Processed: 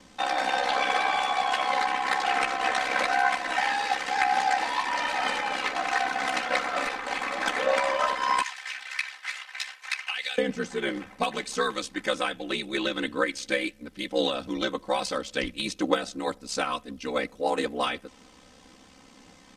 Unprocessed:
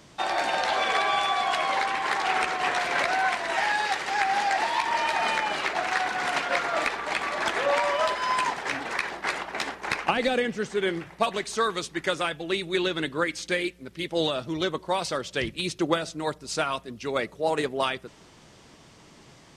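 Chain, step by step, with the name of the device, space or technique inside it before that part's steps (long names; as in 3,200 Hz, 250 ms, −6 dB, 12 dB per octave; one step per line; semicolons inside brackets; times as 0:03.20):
0:08.42–0:10.38: Chebyshev high-pass filter 2,300 Hz, order 2
ring-modulated robot voice (ring modulation 33 Hz; comb filter 3.9 ms, depth 83%)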